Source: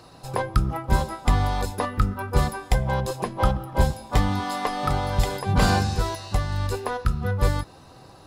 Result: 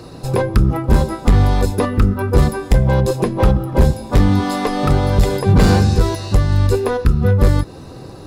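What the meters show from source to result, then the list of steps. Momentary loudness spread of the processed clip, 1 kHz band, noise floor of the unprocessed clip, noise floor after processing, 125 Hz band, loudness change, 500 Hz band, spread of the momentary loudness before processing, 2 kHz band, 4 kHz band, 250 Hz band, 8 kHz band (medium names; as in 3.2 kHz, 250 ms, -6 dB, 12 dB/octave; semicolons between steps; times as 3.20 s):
5 LU, +3.0 dB, -48 dBFS, -36 dBFS, +10.5 dB, +9.0 dB, +10.5 dB, 5 LU, +4.0 dB, +4.0 dB, +11.5 dB, +4.5 dB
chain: in parallel at -2 dB: compression 6:1, threshold -29 dBFS, peak gain reduction 14.5 dB; on the sum: band-stop 3.1 kHz, Q 23; hard clipper -15 dBFS, distortion -12 dB; resonant low shelf 570 Hz +6.5 dB, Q 1.5; trim +3 dB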